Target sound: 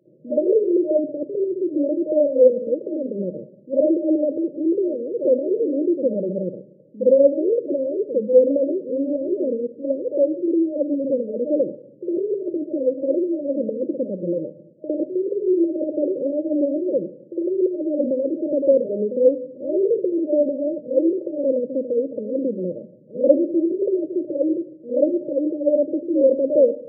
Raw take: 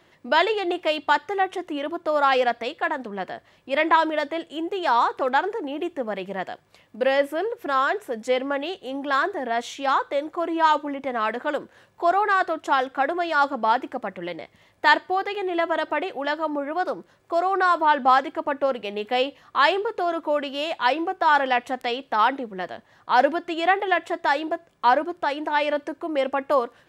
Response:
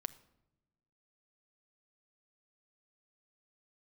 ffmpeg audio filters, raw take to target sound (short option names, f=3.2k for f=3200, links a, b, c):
-filter_complex "[0:a]asplit=2[a][b];[1:a]atrim=start_sample=2205,adelay=57[c];[b][c]afir=irnorm=-1:irlink=0,volume=11dB[d];[a][d]amix=inputs=2:normalize=0,afftfilt=real='re*between(b*sr/4096,110,620)':imag='im*between(b*sr/4096,110,620)':win_size=4096:overlap=0.75,volume=-1dB"